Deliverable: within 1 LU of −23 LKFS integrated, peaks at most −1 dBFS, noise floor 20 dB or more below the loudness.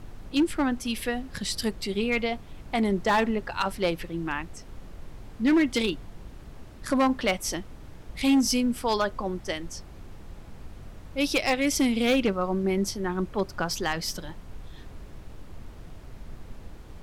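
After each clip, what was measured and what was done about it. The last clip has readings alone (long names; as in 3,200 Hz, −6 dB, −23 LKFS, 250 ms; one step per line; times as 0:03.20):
share of clipped samples 0.8%; peaks flattened at −17.0 dBFS; background noise floor −45 dBFS; target noise floor −47 dBFS; integrated loudness −27.0 LKFS; sample peak −17.0 dBFS; target loudness −23.0 LKFS
→ clipped peaks rebuilt −17 dBFS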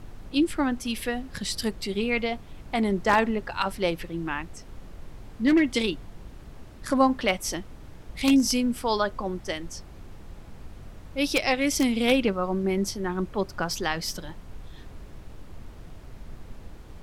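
share of clipped samples 0.0%; background noise floor −45 dBFS; target noise floor −46 dBFS
→ noise reduction from a noise print 6 dB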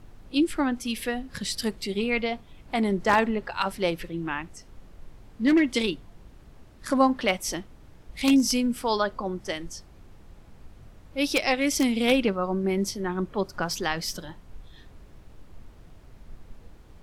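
background noise floor −51 dBFS; integrated loudness −26.0 LKFS; sample peak −8.0 dBFS; target loudness −23.0 LKFS
→ level +3 dB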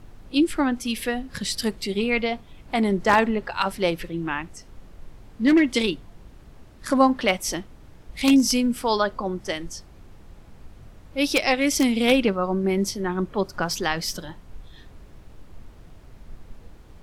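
integrated loudness −23.0 LKFS; sample peak −5.0 dBFS; background noise floor −48 dBFS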